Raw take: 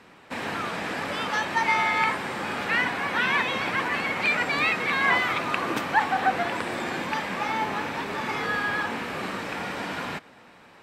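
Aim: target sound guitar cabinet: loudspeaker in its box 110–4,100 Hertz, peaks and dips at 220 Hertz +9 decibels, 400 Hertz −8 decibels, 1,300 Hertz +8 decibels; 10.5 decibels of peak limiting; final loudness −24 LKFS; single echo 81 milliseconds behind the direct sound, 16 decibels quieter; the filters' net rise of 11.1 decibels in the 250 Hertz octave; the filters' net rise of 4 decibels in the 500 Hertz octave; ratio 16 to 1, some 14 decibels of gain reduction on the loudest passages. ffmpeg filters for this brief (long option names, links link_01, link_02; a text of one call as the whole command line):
ffmpeg -i in.wav -af "equalizer=frequency=250:width_type=o:gain=7.5,equalizer=frequency=500:width_type=o:gain=5.5,acompressor=threshold=-28dB:ratio=16,alimiter=level_in=4dB:limit=-24dB:level=0:latency=1,volume=-4dB,highpass=110,equalizer=frequency=220:width_type=q:width=4:gain=9,equalizer=frequency=400:width_type=q:width=4:gain=-8,equalizer=frequency=1300:width_type=q:width=4:gain=8,lowpass=frequency=4100:width=0.5412,lowpass=frequency=4100:width=1.3066,aecho=1:1:81:0.158,volume=10dB" out.wav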